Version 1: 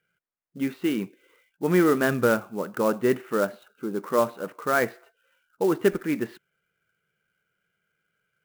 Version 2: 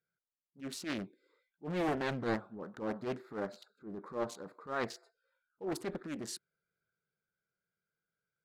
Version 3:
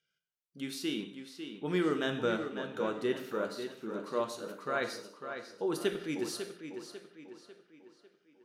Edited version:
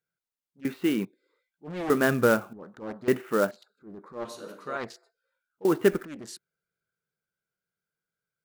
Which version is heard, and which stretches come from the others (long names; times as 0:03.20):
2
0:00.65–0:01.05: punch in from 1
0:01.90–0:02.53: punch in from 1
0:03.08–0:03.51: punch in from 1
0:04.25–0:04.77: punch in from 3
0:05.65–0:06.05: punch in from 1